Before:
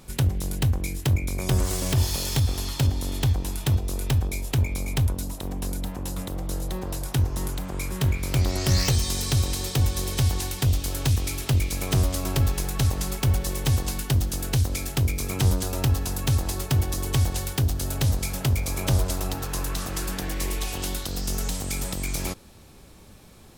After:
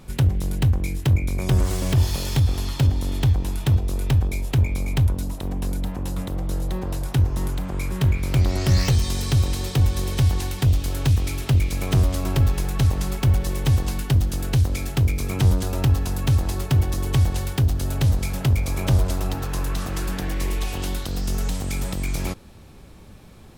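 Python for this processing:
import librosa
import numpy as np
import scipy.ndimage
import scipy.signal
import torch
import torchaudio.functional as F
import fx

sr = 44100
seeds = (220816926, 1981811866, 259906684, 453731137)

p1 = fx.bass_treble(x, sr, bass_db=3, treble_db=-6)
p2 = 10.0 ** (-22.0 / 20.0) * np.tanh(p1 / 10.0 ** (-22.0 / 20.0))
y = p1 + F.gain(torch.from_numpy(p2), -11.0).numpy()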